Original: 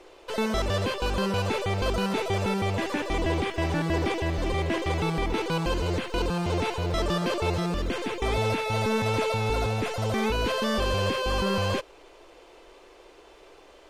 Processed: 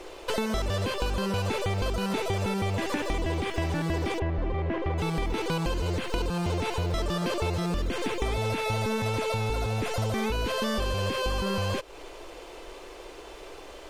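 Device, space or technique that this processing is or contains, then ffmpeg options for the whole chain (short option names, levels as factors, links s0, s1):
ASMR close-microphone chain: -filter_complex "[0:a]lowshelf=f=110:g=5,acompressor=threshold=0.0224:ratio=6,highshelf=f=7600:g=6,asplit=3[s0][s1][s2];[s0]afade=t=out:st=4.18:d=0.02[s3];[s1]lowpass=1800,afade=t=in:st=4.18:d=0.02,afade=t=out:st=4.97:d=0.02[s4];[s2]afade=t=in:st=4.97:d=0.02[s5];[s3][s4][s5]amix=inputs=3:normalize=0,volume=2.24"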